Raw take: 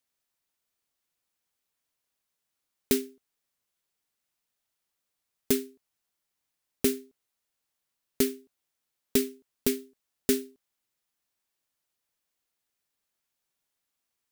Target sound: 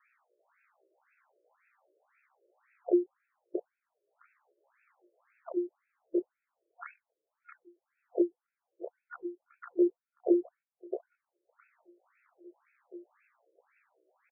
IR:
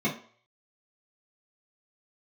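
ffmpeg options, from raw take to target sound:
-filter_complex "[0:a]afftfilt=real='real(if(between(b,1,1008),(2*floor((b-1)/24)+1)*24-b,b),0)':imag='imag(if(between(b,1,1008),(2*floor((b-1)/24)+1)*24-b,b),0)*if(between(b,1,1008),-1,1)':win_size=2048:overlap=0.75,aemphasis=mode=reproduction:type=riaa,agate=range=0.0891:threshold=0.00501:ratio=16:detection=peak,equalizer=f=2800:w=1.5:g=14.5,acompressor=mode=upward:threshold=0.0562:ratio=2.5,flanger=delay=19.5:depth=4:speed=0.87,asetrate=60591,aresample=44100,atempo=0.727827,asplit=2[s0][s1];[s1]adelay=663,lowpass=f=1000:p=1,volume=0.668,asplit=2[s2][s3];[s3]adelay=663,lowpass=f=1000:p=1,volume=0.48,asplit=2[s4][s5];[s5]adelay=663,lowpass=f=1000:p=1,volume=0.48,asplit=2[s6][s7];[s7]adelay=663,lowpass=f=1000:p=1,volume=0.48,asplit=2[s8][s9];[s9]adelay=663,lowpass=f=1000:p=1,volume=0.48,asplit=2[s10][s11];[s11]adelay=663,lowpass=f=1000:p=1,volume=0.48[s12];[s2][s4][s6][s8][s10][s12]amix=inputs=6:normalize=0[s13];[s0][s13]amix=inputs=2:normalize=0,aresample=11025,aresample=44100,afftfilt=real='re*between(b*sr/1024,430*pow(1900/430,0.5+0.5*sin(2*PI*1.9*pts/sr))/1.41,430*pow(1900/430,0.5+0.5*sin(2*PI*1.9*pts/sr))*1.41)':imag='im*between(b*sr/1024,430*pow(1900/430,0.5+0.5*sin(2*PI*1.9*pts/sr))/1.41,430*pow(1900/430,0.5+0.5*sin(2*PI*1.9*pts/sr))*1.41)':win_size=1024:overlap=0.75,volume=1.33"

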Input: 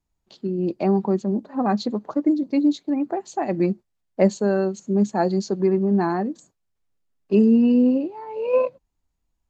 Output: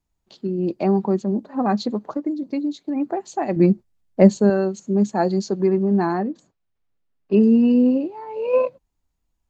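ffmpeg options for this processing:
-filter_complex "[0:a]asplit=3[s0][s1][s2];[s0]afade=t=out:st=2.1:d=0.02[s3];[s1]acompressor=threshold=0.0631:ratio=3,afade=t=in:st=2.1:d=0.02,afade=t=out:st=2.94:d=0.02[s4];[s2]afade=t=in:st=2.94:d=0.02[s5];[s3][s4][s5]amix=inputs=3:normalize=0,asettb=1/sr,asplit=3[s6][s7][s8];[s6]atrim=end=3.564[s9];[s7]atrim=start=3.56:end=4.5,asetpts=PTS-STARTPTS,afade=t=in:d=0.004:c=qsin,afade=t=out:st=0.936:d=0.004:c=qsin,lowshelf=f=280:g=9.5[s10];[s8]atrim=start=4.496[s11];[s9][s10]acrossfade=d=0.004:c1=hsin:c2=qsin[s12];[s12][s11]acrossfade=d=0.004:c1=qsin:c2=hsin,asettb=1/sr,asplit=3[s13][s14][s15];[s13]atrim=end=6.194[s16];[s14]atrim=start=6.19:end=7.43,asetpts=PTS-STARTPTS,afade=t=in:d=0.004:c=qsin,afade=t=out:st=1.236:d=0.004:c=qsin,lowpass=3900[s17];[s15]atrim=start=7.426[s18];[s16][s17]acrossfade=d=0.004:c1=hsin:c2=qsin[s19];[s19][s18]acrossfade=d=0.004:c1=qsin:c2=hsin,volume=1.12"

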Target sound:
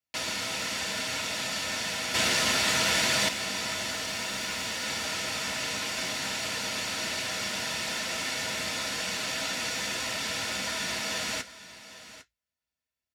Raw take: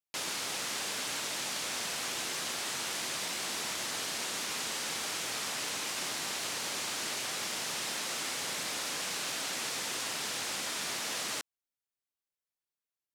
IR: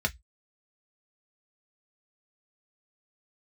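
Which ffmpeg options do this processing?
-filter_complex "[0:a]asettb=1/sr,asplit=3[s0][s1][s2];[s0]atrim=end=3.914[s3];[s1]atrim=start=3.91:end=4.86,asetpts=PTS-STARTPTS,afade=t=in:d=0.004:c=qsin,afade=t=out:st=0.946:d=0.004:c=qsin,volume=39.8,asoftclip=hard,volume=0.0251[s4];[s2]atrim=start=4.856[s5];[s3][s4]acrossfade=d=0.004:c1=hsin:c2=qsin[s6];[s6][s5]acrossfade=d=0.004:c1=qsin:c2=hsin,aecho=1:1:803:0.168[s7];[1:a]atrim=start_sample=2205[s8];[s7][s8]afir=irnorm=-1:irlink=0,asettb=1/sr,asplit=3[s9][s10][s11];[s9]atrim=end=2.144[s12];[s10]atrim=start=2.14:end=3.29,asetpts=PTS-STARTPTS,afade=t=in:d=0.004:c=qsin,afade=t=out:st=1.146:d=0.004:c=qsin,acontrast=80[s13];[s11]atrim=start=3.286[s14];[s12][s13]acrossfade=d=0.004:c1=hsin:c2=qsin[s15];[s15][s14]acrossfade=d=0.004:c1=qsin:c2=hsin,volume=0.708"

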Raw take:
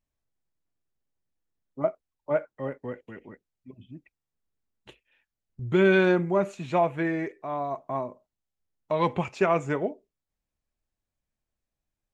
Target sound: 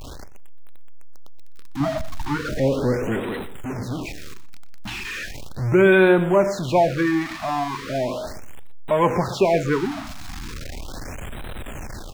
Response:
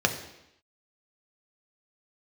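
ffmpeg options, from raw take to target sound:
-filter_complex "[0:a]aeval=exprs='val(0)+0.5*0.0398*sgn(val(0))':c=same,acrossover=split=6100[s0][s1];[s1]acompressor=threshold=0.00251:ratio=4:attack=1:release=60[s2];[s0][s2]amix=inputs=2:normalize=0,asettb=1/sr,asplit=3[s3][s4][s5];[s3]atrim=end=1.804[s6];[s4]atrim=start=1.8:end=3.2,asetpts=PTS-STARTPTS,afade=t=in:d=0.004:c=qsin,afade=t=out:st=1.396:d=0.004:c=qsin,lowshelf=f=340:g=8.5[s7];[s5]atrim=start=3.196[s8];[s6][s7]acrossfade=d=0.004:c1=hsin:c2=qsin[s9];[s9][s8]acrossfade=d=0.004:c1=qsin:c2=hsin,dynaudnorm=f=140:g=5:m=1.58,asplit=2[s10][s11];[s11]adelay=122.4,volume=0.2,highshelf=f=4000:g=-2.76[s12];[s10][s12]amix=inputs=2:normalize=0,asplit=2[s13][s14];[1:a]atrim=start_sample=2205,asetrate=48510,aresample=44100[s15];[s14][s15]afir=irnorm=-1:irlink=0,volume=0.0447[s16];[s13][s16]amix=inputs=2:normalize=0,afftfilt=real='re*(1-between(b*sr/1024,420*pow(5800/420,0.5+0.5*sin(2*PI*0.37*pts/sr))/1.41,420*pow(5800/420,0.5+0.5*sin(2*PI*0.37*pts/sr))*1.41))':imag='im*(1-between(b*sr/1024,420*pow(5800/420,0.5+0.5*sin(2*PI*0.37*pts/sr))/1.41,420*pow(5800/420,0.5+0.5*sin(2*PI*0.37*pts/sr))*1.41))':win_size=1024:overlap=0.75"

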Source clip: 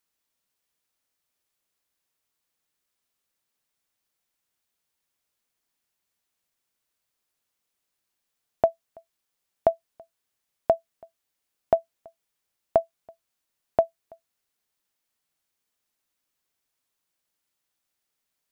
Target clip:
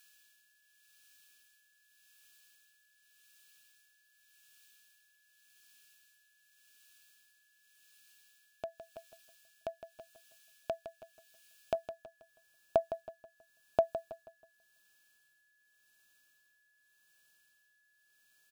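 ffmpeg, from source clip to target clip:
-af "asetnsamples=n=441:p=0,asendcmd='11.75 highshelf g 6',highshelf=f=1500:t=q:w=1.5:g=13,alimiter=limit=0.133:level=0:latency=1:release=221,tremolo=f=0.87:d=0.71,aeval=exprs='val(0)+0.000316*sin(2*PI*1700*n/s)':c=same,asuperstop=centerf=2000:order=4:qfactor=3.1,aecho=1:1:161|322|483|644:0.282|0.0986|0.0345|0.0121,volume=1.5"

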